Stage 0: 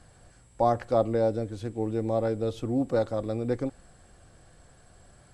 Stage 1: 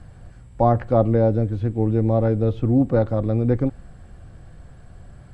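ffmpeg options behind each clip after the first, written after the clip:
ffmpeg -i in.wav -filter_complex "[0:a]acrossover=split=3200[link_01][link_02];[link_02]acompressor=threshold=-58dB:ratio=4:attack=1:release=60[link_03];[link_01][link_03]amix=inputs=2:normalize=0,bass=frequency=250:gain=10,treble=frequency=4000:gain=-10,volume=4.5dB" out.wav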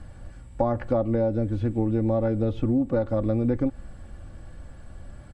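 ffmpeg -i in.wav -af "aecho=1:1:3.5:0.43,acompressor=threshold=-20dB:ratio=6" out.wav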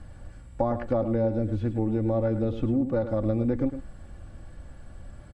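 ffmpeg -i in.wav -af "aecho=1:1:106:0.299,volume=-2dB" out.wav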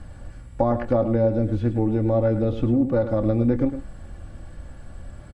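ffmpeg -i in.wav -filter_complex "[0:a]asplit=2[link_01][link_02];[link_02]adelay=25,volume=-13dB[link_03];[link_01][link_03]amix=inputs=2:normalize=0,volume=4.5dB" out.wav

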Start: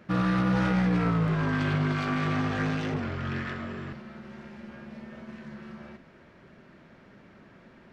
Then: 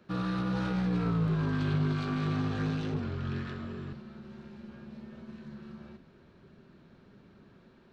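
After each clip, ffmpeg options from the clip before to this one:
ffmpeg -i in.wav -filter_complex "[0:a]equalizer=frequency=400:width_type=o:width=0.33:gain=5,equalizer=frequency=630:width_type=o:width=0.33:gain=-3,equalizer=frequency=2000:width_type=o:width=0.33:gain=-7,equalizer=frequency=4000:width_type=o:width=0.33:gain=7,acrossover=split=240|960[link_01][link_02][link_03];[link_01]dynaudnorm=framelen=680:gausssize=3:maxgain=6.5dB[link_04];[link_04][link_02][link_03]amix=inputs=3:normalize=0,volume=-7dB" out.wav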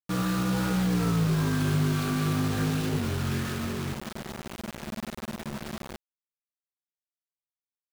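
ffmpeg -i in.wav -filter_complex "[0:a]asplit=2[link_01][link_02];[link_02]alimiter=level_in=6.5dB:limit=-24dB:level=0:latency=1:release=140,volume=-6.5dB,volume=2.5dB[link_03];[link_01][link_03]amix=inputs=2:normalize=0,acrusher=bits=5:mix=0:aa=0.000001" out.wav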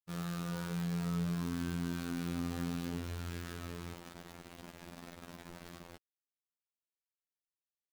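ffmpeg -i in.wav -af "afftfilt=real='hypot(re,im)*cos(PI*b)':imag='0':win_size=2048:overlap=0.75,volume=-8.5dB" out.wav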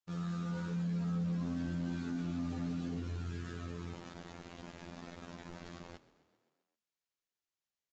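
ffmpeg -i in.wav -filter_complex "[0:a]aresample=16000,asoftclip=type=tanh:threshold=-33dB,aresample=44100,asplit=7[link_01][link_02][link_03][link_04][link_05][link_06][link_07];[link_02]adelay=131,afreqshift=36,volume=-18.5dB[link_08];[link_03]adelay=262,afreqshift=72,volume=-22.8dB[link_09];[link_04]adelay=393,afreqshift=108,volume=-27.1dB[link_10];[link_05]adelay=524,afreqshift=144,volume=-31.4dB[link_11];[link_06]adelay=655,afreqshift=180,volume=-35.7dB[link_12];[link_07]adelay=786,afreqshift=216,volume=-40dB[link_13];[link_01][link_08][link_09][link_10][link_11][link_12][link_13]amix=inputs=7:normalize=0,volume=3dB" out.wav

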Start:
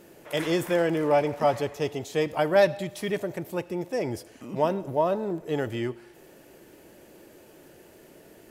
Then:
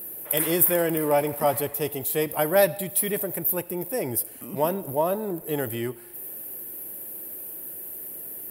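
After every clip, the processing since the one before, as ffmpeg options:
ffmpeg -i in.wav -af "aexciter=amount=12.4:drive=9.1:freq=9500" out.wav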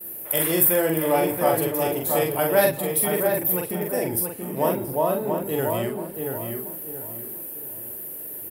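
ffmpeg -i in.wav -filter_complex "[0:a]asplit=2[link_01][link_02];[link_02]adelay=44,volume=-3dB[link_03];[link_01][link_03]amix=inputs=2:normalize=0,asplit=2[link_04][link_05];[link_05]adelay=680,lowpass=frequency=1900:poles=1,volume=-4dB,asplit=2[link_06][link_07];[link_07]adelay=680,lowpass=frequency=1900:poles=1,volume=0.36,asplit=2[link_08][link_09];[link_09]adelay=680,lowpass=frequency=1900:poles=1,volume=0.36,asplit=2[link_10][link_11];[link_11]adelay=680,lowpass=frequency=1900:poles=1,volume=0.36,asplit=2[link_12][link_13];[link_13]adelay=680,lowpass=frequency=1900:poles=1,volume=0.36[link_14];[link_04][link_06][link_08][link_10][link_12][link_14]amix=inputs=6:normalize=0,agate=range=-33dB:threshold=-40dB:ratio=3:detection=peak" out.wav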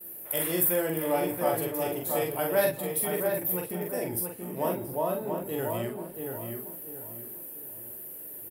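ffmpeg -i in.wav -filter_complex "[0:a]asplit=2[link_01][link_02];[link_02]adelay=17,volume=-11dB[link_03];[link_01][link_03]amix=inputs=2:normalize=0,volume=-7dB" out.wav

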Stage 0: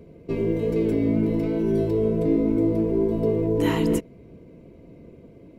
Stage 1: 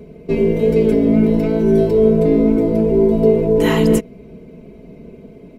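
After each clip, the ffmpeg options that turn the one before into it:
ffmpeg -i in.wav -af "aecho=1:1:4.7:0.64,volume=7dB" out.wav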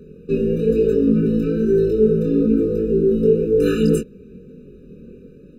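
ffmpeg -i in.wav -af "flanger=delay=20:depth=6.3:speed=1.1,afftfilt=real='re*eq(mod(floor(b*sr/1024/590),2),0)':imag='im*eq(mod(floor(b*sr/1024/590),2),0)':win_size=1024:overlap=0.75" out.wav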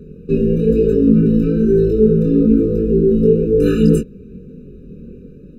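ffmpeg -i in.wav -af "lowshelf=frequency=280:gain=10,volume=-1dB" out.wav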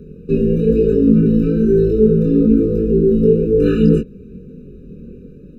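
ffmpeg -i in.wav -filter_complex "[0:a]acrossover=split=4300[link_01][link_02];[link_02]acompressor=threshold=-56dB:ratio=4:attack=1:release=60[link_03];[link_01][link_03]amix=inputs=2:normalize=0" out.wav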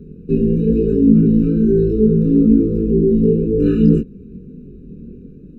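ffmpeg -i in.wav -af "lowshelf=frequency=430:width_type=q:width=1.5:gain=7,volume=-7.5dB" out.wav

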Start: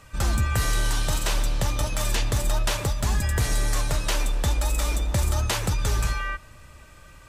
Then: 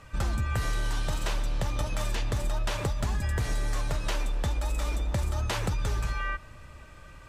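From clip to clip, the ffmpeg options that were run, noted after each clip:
ffmpeg -i in.wav -af "aemphasis=mode=reproduction:type=cd,acompressor=threshold=-25dB:ratio=6" out.wav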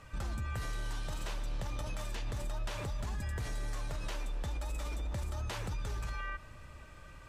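ffmpeg -i in.wav -af "alimiter=level_in=3dB:limit=-24dB:level=0:latency=1:release=41,volume=-3dB,volume=-3.5dB" out.wav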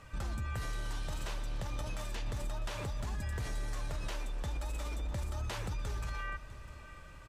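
ffmpeg -i in.wav -af "aecho=1:1:651:0.158" out.wav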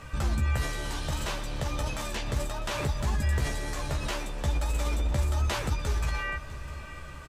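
ffmpeg -i in.wav -filter_complex "[0:a]asplit=2[link_01][link_02];[link_02]adelay=14,volume=-5dB[link_03];[link_01][link_03]amix=inputs=2:normalize=0,volume=8.5dB" out.wav

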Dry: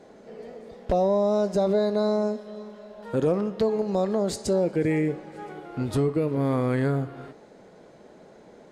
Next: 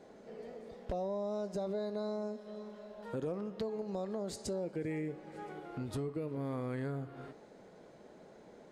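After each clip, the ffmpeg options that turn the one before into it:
ffmpeg -i in.wav -af "acompressor=threshold=-35dB:ratio=2,volume=-6dB" out.wav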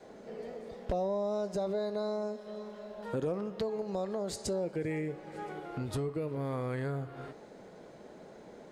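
ffmpeg -i in.wav -af "adynamicequalizer=threshold=0.00224:dfrequency=250:dqfactor=1.6:tfrequency=250:tqfactor=1.6:attack=5:release=100:ratio=0.375:range=3:mode=cutabove:tftype=bell,volume=5dB" out.wav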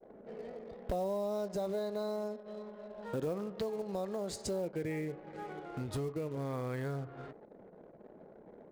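ffmpeg -i in.wav -af "acrusher=bits=6:mode=log:mix=0:aa=0.000001,anlmdn=0.00398,volume=-2.5dB" out.wav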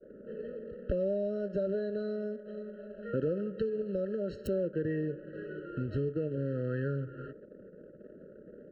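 ffmpeg -i in.wav -filter_complex "[0:a]acrossover=split=240|3300[link_01][link_02][link_03];[link_03]acrusher=bits=4:mix=0:aa=0.000001[link_04];[link_01][link_02][link_04]amix=inputs=3:normalize=0,afftfilt=real='re*eq(mod(floor(b*sr/1024/640),2),0)':imag='im*eq(mod(floor(b*sr/1024/640),2),0)':win_size=1024:overlap=0.75,volume=4.5dB" out.wav

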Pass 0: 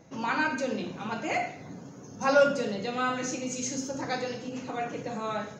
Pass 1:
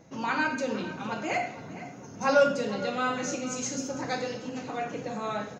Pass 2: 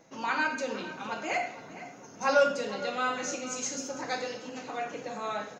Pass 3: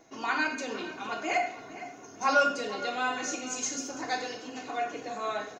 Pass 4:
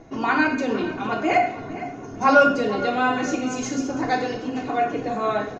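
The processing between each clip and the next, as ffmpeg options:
ffmpeg -i in.wav -filter_complex "[0:a]asplit=2[link_01][link_02];[link_02]adelay=460,lowpass=frequency=3700:poles=1,volume=-14dB,asplit=2[link_03][link_04];[link_04]adelay=460,lowpass=frequency=3700:poles=1,volume=0.48,asplit=2[link_05][link_06];[link_06]adelay=460,lowpass=frequency=3700:poles=1,volume=0.48,asplit=2[link_07][link_08];[link_08]adelay=460,lowpass=frequency=3700:poles=1,volume=0.48,asplit=2[link_09][link_10];[link_10]adelay=460,lowpass=frequency=3700:poles=1,volume=0.48[link_11];[link_01][link_03][link_05][link_07][link_09][link_11]amix=inputs=6:normalize=0" out.wav
ffmpeg -i in.wav -af "equalizer=frequency=74:width=0.37:gain=-14.5" out.wav
ffmpeg -i in.wav -af "aecho=1:1:2.8:0.55" out.wav
ffmpeg -i in.wav -af "aemphasis=mode=reproduction:type=riaa,volume=8.5dB" out.wav

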